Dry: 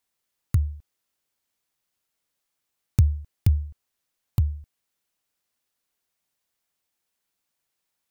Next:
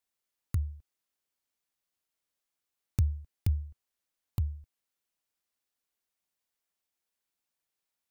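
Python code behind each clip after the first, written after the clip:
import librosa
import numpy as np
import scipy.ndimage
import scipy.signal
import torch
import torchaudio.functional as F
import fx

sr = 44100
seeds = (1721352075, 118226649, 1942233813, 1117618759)

y = fx.peak_eq(x, sr, hz=130.0, db=-4.5, octaves=0.66)
y = y * 10.0 ** (-7.0 / 20.0)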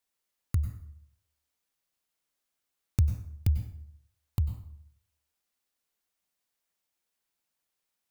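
y = fx.rev_plate(x, sr, seeds[0], rt60_s=0.66, hf_ratio=0.7, predelay_ms=85, drr_db=8.0)
y = y * 10.0 ** (2.5 / 20.0)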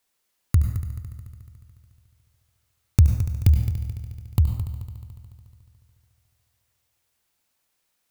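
y = fx.echo_heads(x, sr, ms=72, heads='first and third', feedback_pct=66, wet_db=-13)
y = y * 10.0 ** (9.0 / 20.0)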